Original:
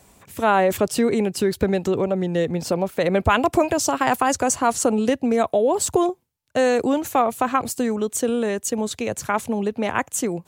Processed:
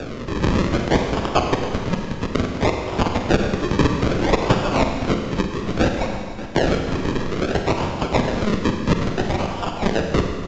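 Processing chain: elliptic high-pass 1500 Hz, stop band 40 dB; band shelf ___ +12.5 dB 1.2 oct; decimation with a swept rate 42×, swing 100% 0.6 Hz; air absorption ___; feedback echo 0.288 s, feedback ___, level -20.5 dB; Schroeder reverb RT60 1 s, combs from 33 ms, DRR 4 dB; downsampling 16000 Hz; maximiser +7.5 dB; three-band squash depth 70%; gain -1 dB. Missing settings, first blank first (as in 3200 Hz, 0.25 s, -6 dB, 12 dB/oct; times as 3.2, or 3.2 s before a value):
4000 Hz, 72 m, 56%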